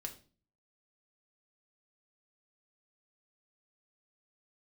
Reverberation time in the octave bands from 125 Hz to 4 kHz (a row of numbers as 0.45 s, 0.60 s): 0.65 s, 0.55 s, 0.45 s, 0.35 s, 0.35 s, 0.35 s